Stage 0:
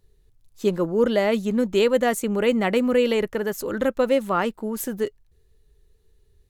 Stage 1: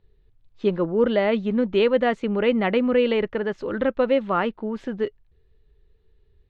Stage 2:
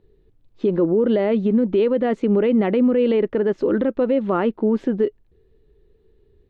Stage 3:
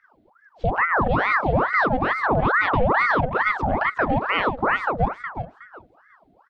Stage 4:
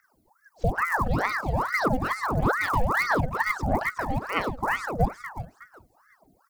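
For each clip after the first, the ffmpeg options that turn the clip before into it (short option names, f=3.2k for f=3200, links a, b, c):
-af "lowpass=f=3.6k:w=0.5412,lowpass=f=3.6k:w=1.3066"
-af "equalizer=f=320:t=o:w=1.9:g=13,alimiter=limit=-11dB:level=0:latency=1:release=85"
-af "aecho=1:1:367|734|1101:0.376|0.0827|0.0182,aeval=exprs='val(0)*sin(2*PI*980*n/s+980*0.75/2.3*sin(2*PI*2.3*n/s))':c=same"
-af "aphaser=in_gain=1:out_gain=1:delay=1.2:decay=0.55:speed=1.6:type=triangular,aexciter=amount=10.7:drive=4.1:freq=4.9k,volume=-7dB"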